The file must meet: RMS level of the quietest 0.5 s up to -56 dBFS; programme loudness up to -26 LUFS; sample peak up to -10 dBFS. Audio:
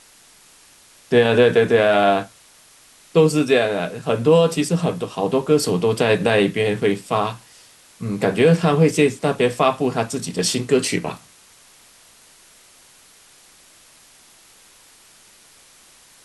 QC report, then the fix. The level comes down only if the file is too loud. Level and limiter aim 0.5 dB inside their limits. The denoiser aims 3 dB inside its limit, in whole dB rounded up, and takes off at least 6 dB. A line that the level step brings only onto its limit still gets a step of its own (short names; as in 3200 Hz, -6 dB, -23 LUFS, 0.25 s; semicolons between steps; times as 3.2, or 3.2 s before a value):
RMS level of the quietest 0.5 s -50 dBFS: fail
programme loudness -18.5 LUFS: fail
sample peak -4.5 dBFS: fail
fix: gain -8 dB